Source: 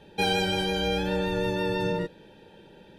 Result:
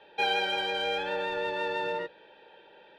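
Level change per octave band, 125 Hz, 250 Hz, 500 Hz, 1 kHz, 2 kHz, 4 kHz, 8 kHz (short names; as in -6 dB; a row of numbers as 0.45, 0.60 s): -21.0 dB, -14.5 dB, -4.0 dB, +0.5 dB, +0.5 dB, -2.0 dB, under -10 dB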